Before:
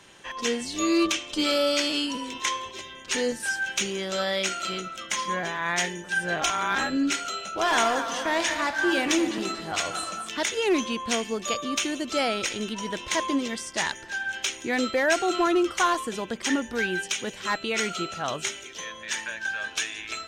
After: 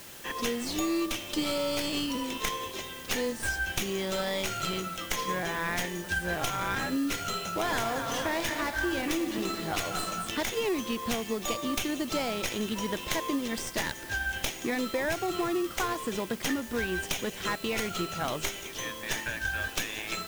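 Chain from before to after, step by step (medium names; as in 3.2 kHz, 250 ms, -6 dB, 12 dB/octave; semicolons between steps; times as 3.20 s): tracing distortion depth 0.09 ms; in parallel at -8 dB: sample-rate reducer 1.5 kHz, jitter 0%; on the sum: compression, threshold -27 dBFS, peak gain reduction 10.5 dB; word length cut 8-bit, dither triangular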